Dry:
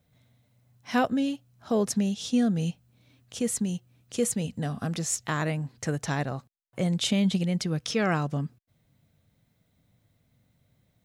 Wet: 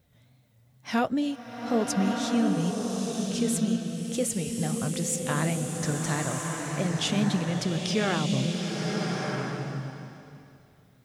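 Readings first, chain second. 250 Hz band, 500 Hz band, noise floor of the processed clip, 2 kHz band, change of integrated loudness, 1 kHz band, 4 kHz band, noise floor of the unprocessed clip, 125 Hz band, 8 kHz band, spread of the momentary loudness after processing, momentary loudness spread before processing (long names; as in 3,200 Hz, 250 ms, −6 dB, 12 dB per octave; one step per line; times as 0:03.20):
+1.0 dB, +1.0 dB, −60 dBFS, +1.5 dB, +0.5 dB, +1.5 dB, +2.0 dB, −71 dBFS, +1.0 dB, +1.5 dB, 7 LU, 11 LU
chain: in parallel at −0.5 dB: downward compressor, threshold −39 dBFS, peak gain reduction 19 dB
on the sum: tape wow and flutter 100 cents
flanger 1.6 Hz, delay 1.9 ms, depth 6.6 ms, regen −66%
slow-attack reverb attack 1,280 ms, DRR 0.5 dB
level +1.5 dB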